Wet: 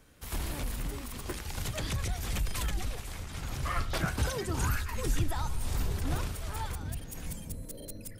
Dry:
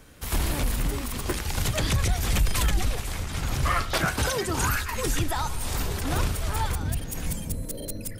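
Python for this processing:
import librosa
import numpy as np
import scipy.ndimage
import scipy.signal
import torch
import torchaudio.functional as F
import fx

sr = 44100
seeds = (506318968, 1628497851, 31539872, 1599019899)

y = fx.low_shelf(x, sr, hz=240.0, db=8.0, at=(3.75, 6.16))
y = F.gain(torch.from_numpy(y), -9.0).numpy()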